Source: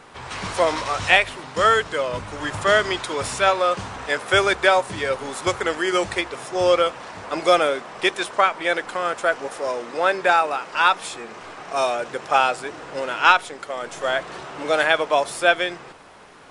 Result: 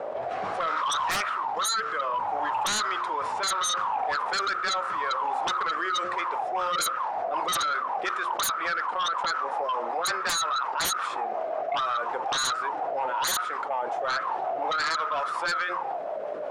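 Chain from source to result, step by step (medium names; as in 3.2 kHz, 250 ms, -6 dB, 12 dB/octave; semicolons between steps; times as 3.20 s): de-hum 89.62 Hz, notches 8; auto-wah 580–1300 Hz, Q 12, up, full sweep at -18.5 dBFS; rotary cabinet horn 0.7 Hz, later 5.5 Hz, at 5.94 s; sine folder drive 19 dB, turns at -15.5 dBFS; level flattener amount 70%; trim -8.5 dB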